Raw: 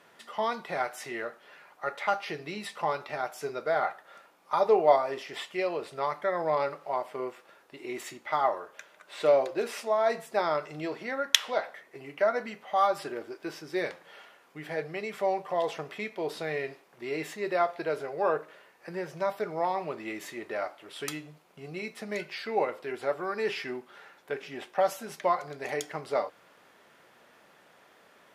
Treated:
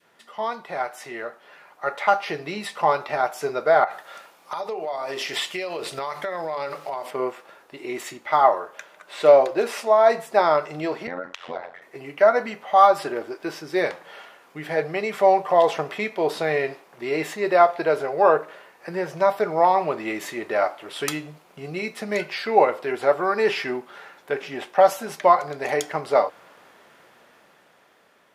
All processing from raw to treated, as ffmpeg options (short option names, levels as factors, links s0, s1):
-filter_complex "[0:a]asettb=1/sr,asplit=3[s0][s1][s2];[s0]atrim=end=3.844[s3];[s1]atrim=start=3.84:end=7.11,asetpts=PTS-STARTPTS,afade=t=in:d=0.004:c=qsin,afade=t=out:st=3.266:d=0.004:c=qsin,bandreject=f=50:t=h:w=6,bandreject=f=100:t=h:w=6,bandreject=f=150:t=h:w=6,bandreject=f=200:t=h:w=6,bandreject=f=250:t=h:w=6,bandreject=f=300:t=h:w=6,bandreject=f=350:t=h:w=6,bandreject=f=400:t=h:w=6,bandreject=f=450:t=h:w=6,bandreject=f=500:t=h:w=6,acompressor=threshold=0.0178:ratio=12:attack=3.2:release=140:knee=1:detection=peak,adynamicequalizer=threshold=0.00141:dfrequency=2200:dqfactor=0.7:tfrequency=2200:tqfactor=0.7:attack=5:release=100:ratio=0.375:range=4:mode=boostabove:tftype=highshelf[s4];[s2]atrim=start=7.106[s5];[s3][s4]acrossfade=d=0.004:c1=hsin:c2=qsin[s6];[s6][s5]acrossfade=d=0.004:c1=qsin:c2=hsin,asettb=1/sr,asplit=3[s7][s8][s9];[s7]atrim=end=11.074[s10];[s8]atrim=start=11.07:end=11.82,asetpts=PTS-STARTPTS,afade=t=in:d=0.004:c=qsin,afade=t=out:st=0.746:d=0.004:c=qsin,aemphasis=mode=reproduction:type=bsi,acompressor=threshold=0.0316:ratio=16:attack=3.2:release=140:knee=1:detection=peak,tremolo=f=88:d=0.974[s11];[s9]atrim=start=11.816[s12];[s10][s11]acrossfade=d=0.004:c1=hsin:c2=qsin[s13];[s13][s12]acrossfade=d=0.004:c1=qsin:c2=hsin,adynamicequalizer=threshold=0.0112:dfrequency=820:dqfactor=0.81:tfrequency=820:tqfactor=0.81:attack=5:release=100:ratio=0.375:range=2.5:mode=boostabove:tftype=bell,dynaudnorm=f=660:g=5:m=3.55,volume=0.841"